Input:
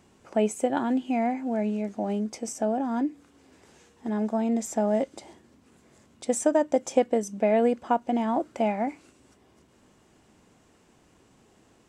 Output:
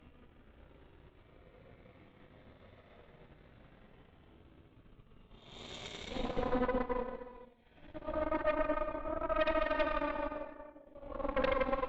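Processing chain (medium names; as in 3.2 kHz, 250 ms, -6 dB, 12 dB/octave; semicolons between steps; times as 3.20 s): compression 4:1, threshold -37 dBFS, peak gain reduction 17.5 dB; LPC vocoder at 8 kHz pitch kept; Paulstretch 11×, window 0.10 s, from 5.70 s; Chebyshev shaper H 8 -10 dB, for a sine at -21.5 dBFS; gated-style reverb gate 470 ms flat, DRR 7 dB; transient shaper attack 0 dB, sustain -8 dB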